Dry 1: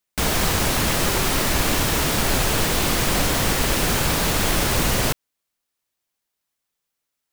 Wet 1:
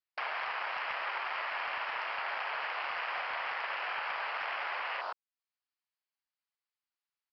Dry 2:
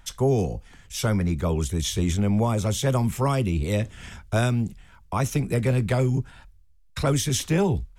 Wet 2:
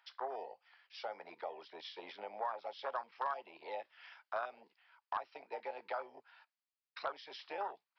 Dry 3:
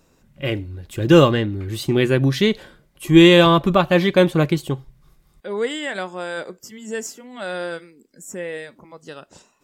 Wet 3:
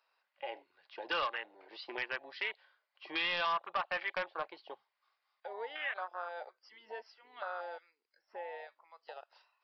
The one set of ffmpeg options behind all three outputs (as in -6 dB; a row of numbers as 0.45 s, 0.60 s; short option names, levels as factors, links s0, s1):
-af "afwtdn=0.0501,highpass=f=780:w=0.5412,highpass=f=780:w=1.3066,equalizer=f=3600:t=o:w=0.24:g=-5,acompressor=threshold=0.00282:ratio=2,aresample=11025,asoftclip=type=hard:threshold=0.0211,aresample=44100,volume=2"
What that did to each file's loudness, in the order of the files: -15.5 LU, -19.5 LU, -21.0 LU